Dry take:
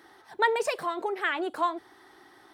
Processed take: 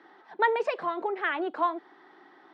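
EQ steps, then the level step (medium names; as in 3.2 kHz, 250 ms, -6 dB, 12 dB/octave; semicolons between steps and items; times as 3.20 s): Chebyshev high-pass 160 Hz, order 8; distance through air 180 m; tone controls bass -1 dB, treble -6 dB; +1.5 dB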